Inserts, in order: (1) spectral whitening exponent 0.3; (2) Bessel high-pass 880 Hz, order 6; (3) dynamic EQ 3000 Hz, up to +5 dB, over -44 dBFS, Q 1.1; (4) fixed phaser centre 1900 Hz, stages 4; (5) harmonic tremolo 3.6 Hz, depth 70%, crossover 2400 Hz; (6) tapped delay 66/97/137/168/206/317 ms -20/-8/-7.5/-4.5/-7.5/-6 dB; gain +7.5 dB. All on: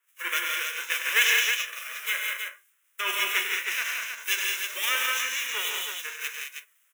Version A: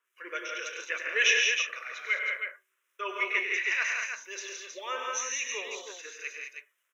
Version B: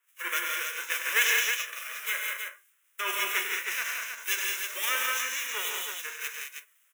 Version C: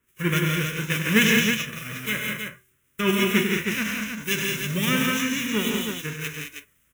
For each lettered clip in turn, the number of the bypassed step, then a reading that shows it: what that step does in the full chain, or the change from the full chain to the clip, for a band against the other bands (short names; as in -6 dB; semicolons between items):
1, 500 Hz band +7.5 dB; 3, loudness change -2.5 LU; 2, 500 Hz band +14.5 dB